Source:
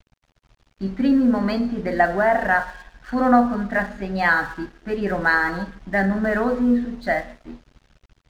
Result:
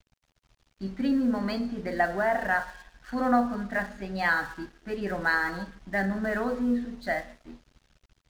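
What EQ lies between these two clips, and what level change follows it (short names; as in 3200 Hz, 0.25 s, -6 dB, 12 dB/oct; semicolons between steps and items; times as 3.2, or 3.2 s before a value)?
high shelf 3600 Hz +7.5 dB; -8.0 dB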